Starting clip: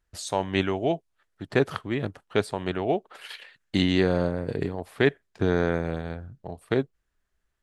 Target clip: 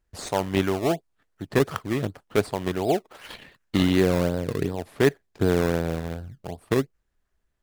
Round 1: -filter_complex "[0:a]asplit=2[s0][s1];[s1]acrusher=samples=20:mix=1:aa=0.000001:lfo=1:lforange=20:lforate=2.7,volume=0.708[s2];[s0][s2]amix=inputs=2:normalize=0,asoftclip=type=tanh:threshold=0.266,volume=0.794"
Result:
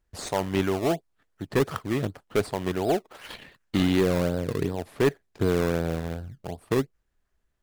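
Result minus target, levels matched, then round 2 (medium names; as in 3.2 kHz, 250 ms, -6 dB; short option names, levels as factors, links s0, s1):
saturation: distortion +16 dB
-filter_complex "[0:a]asplit=2[s0][s1];[s1]acrusher=samples=20:mix=1:aa=0.000001:lfo=1:lforange=20:lforate=2.7,volume=0.708[s2];[s0][s2]amix=inputs=2:normalize=0,asoftclip=type=tanh:threshold=0.891,volume=0.794"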